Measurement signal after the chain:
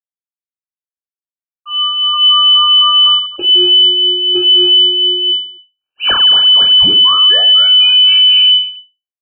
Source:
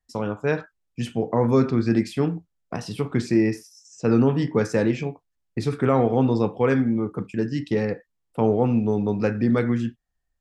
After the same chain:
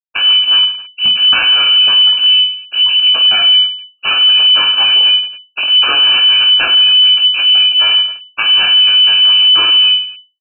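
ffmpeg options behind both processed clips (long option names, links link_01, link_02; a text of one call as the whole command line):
ffmpeg -i in.wav -filter_complex "[0:a]aemphasis=mode=production:type=75kf,afftfilt=real='re*gte(hypot(re,im),0.112)':imag='im*gte(hypot(re,im),0.112)':win_size=1024:overlap=0.75,adynamicequalizer=threshold=0.0224:dfrequency=820:dqfactor=0.72:tfrequency=820:tqfactor=0.72:attack=5:release=100:ratio=0.375:range=2:mode=boostabove:tftype=bell,acompressor=threshold=-25dB:ratio=2,aresample=11025,aeval=exprs='abs(val(0))':channel_layout=same,aresample=44100,acrossover=split=420[link_01][link_02];[link_01]aeval=exprs='val(0)*(1-0.7/2+0.7/2*cos(2*PI*4*n/s))':channel_layout=same[link_03];[link_02]aeval=exprs='val(0)*(1-0.7/2-0.7/2*cos(2*PI*4*n/s))':channel_layout=same[link_04];[link_03][link_04]amix=inputs=2:normalize=0,aeval=exprs='clip(val(0),-1,0.0133)':channel_layout=same,aeval=exprs='0.133*(cos(1*acos(clip(val(0)/0.133,-1,1)))-cos(1*PI/2))+0.00596*(cos(4*acos(clip(val(0)/0.133,-1,1)))-cos(4*PI/2))+0.00668*(cos(5*acos(clip(val(0)/0.133,-1,1)))-cos(5*PI/2))':channel_layout=same,asuperstop=centerf=960:order=20:qfactor=1.8,asplit=2[link_05][link_06];[link_06]aecho=0:1:20|50|95|162.5|263.8:0.631|0.398|0.251|0.158|0.1[link_07];[link_05][link_07]amix=inputs=2:normalize=0,lowpass=frequency=2600:width_type=q:width=0.5098,lowpass=frequency=2600:width_type=q:width=0.6013,lowpass=frequency=2600:width_type=q:width=0.9,lowpass=frequency=2600:width_type=q:width=2.563,afreqshift=-3000,alimiter=level_in=26dB:limit=-1dB:release=50:level=0:latency=1,volume=-2dB" out.wav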